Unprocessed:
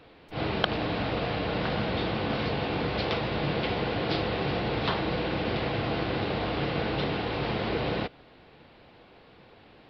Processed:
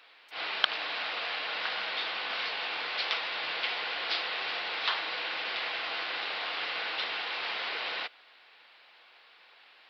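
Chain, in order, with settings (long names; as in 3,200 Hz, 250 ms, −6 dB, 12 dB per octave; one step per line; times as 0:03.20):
high-pass filter 1,400 Hz 12 dB per octave
level +3.5 dB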